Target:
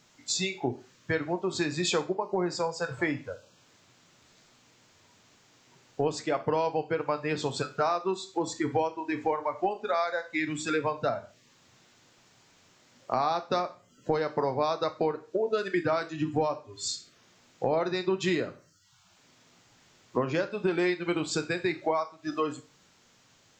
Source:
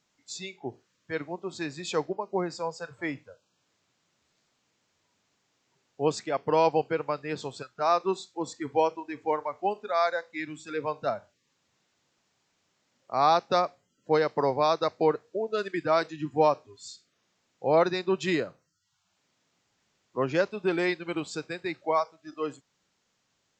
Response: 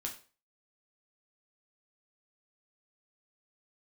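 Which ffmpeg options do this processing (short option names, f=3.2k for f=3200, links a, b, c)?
-filter_complex "[0:a]acompressor=threshold=-38dB:ratio=6,asplit=2[a][b];[1:a]atrim=start_sample=2205,lowshelf=f=200:g=4.5[c];[b][c]afir=irnorm=-1:irlink=0,volume=-1dB[d];[a][d]amix=inputs=2:normalize=0,volume=7.5dB"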